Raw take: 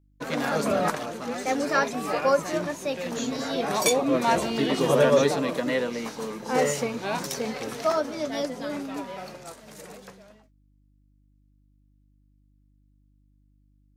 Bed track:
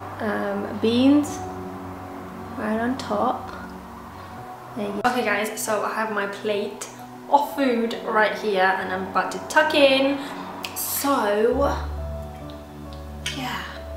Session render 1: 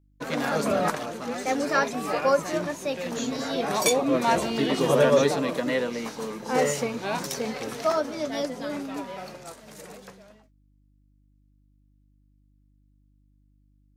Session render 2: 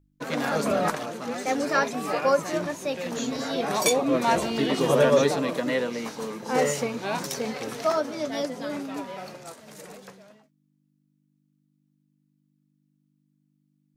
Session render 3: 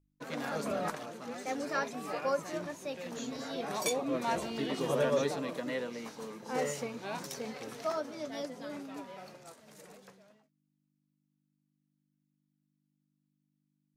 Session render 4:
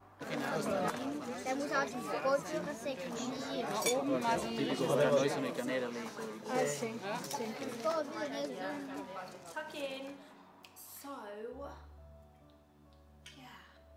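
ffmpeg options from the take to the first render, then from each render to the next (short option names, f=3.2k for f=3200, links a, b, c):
-af anull
-af "bandreject=f=50:t=h:w=4,bandreject=f=100:t=h:w=4"
-af "volume=-10dB"
-filter_complex "[1:a]volume=-25dB[a];[0:a][a]amix=inputs=2:normalize=0"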